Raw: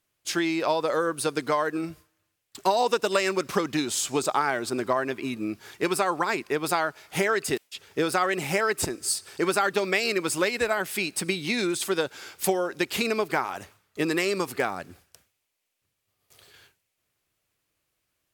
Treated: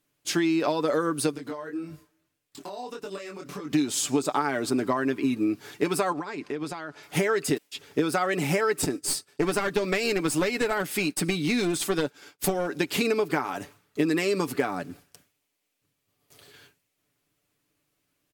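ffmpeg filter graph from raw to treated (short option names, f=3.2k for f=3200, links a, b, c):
-filter_complex "[0:a]asettb=1/sr,asplit=3[a][b][c];[a]atrim=end=1.314[d];[b]atrim=start=1.31:end=3.72,asetpts=PTS-STARTPTS,afade=t=in:d=0.004:c=qsin,afade=t=out:st=2.406:d=0.004:c=qsin,acompressor=threshold=-36dB:ratio=4:attack=3.2:release=140:knee=1:detection=peak,flanger=delay=20:depth=4.9:speed=1.7[e];[c]atrim=start=3.716[f];[d][e]acrossfade=d=0.004:c1=hsin:c2=qsin[g];[g][f]acrossfade=d=0.004:c1=qsin:c2=hsin,asettb=1/sr,asplit=3[h][i][j];[h]atrim=end=6.124[k];[i]atrim=start=6.12:end=7.03,asetpts=PTS-STARTPTS,afade=t=in:d=0.004:c=qsin,afade=t=out:st=0.906:d=0.004:c=qsin,acompressor=threshold=-33dB:ratio=8:attack=3.2:release=140:knee=1:detection=peak,lowpass=7.2k[l];[j]atrim=start=7.026[m];[k][l]acrossfade=d=0.004:c1=hsin:c2=qsin[n];[n][m]acrossfade=d=0.004:c1=qsin:c2=hsin,asettb=1/sr,asplit=3[o][p][q];[o]atrim=end=8.824[r];[p]atrim=start=8.82:end=12.68,asetpts=PTS-STARTPTS,afade=t=in:d=0.004:c=qsin,afade=t=out:st=3.856:d=0.004:c=qsin,agate=range=-33dB:threshold=-36dB:ratio=3:release=100:detection=peak,aeval=exprs='clip(val(0),-1,0.0473)':c=same[s];[q]atrim=start=12.676[t];[r][s]acrossfade=d=0.004:c1=hsin:c2=qsin[u];[u][t]acrossfade=d=0.004:c1=qsin:c2=hsin,equalizer=f=250:w=1:g=8.5,aecho=1:1:6.9:0.47,acompressor=threshold=-21dB:ratio=4"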